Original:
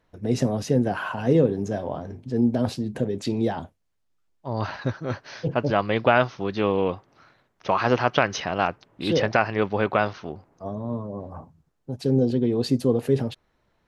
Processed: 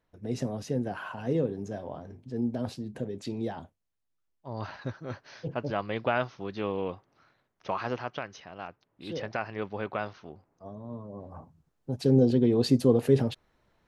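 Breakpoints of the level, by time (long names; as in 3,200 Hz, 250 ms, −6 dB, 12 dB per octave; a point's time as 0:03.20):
0:07.72 −9 dB
0:08.41 −19 dB
0:09.54 −11 dB
0:10.88 −11 dB
0:11.92 −0.5 dB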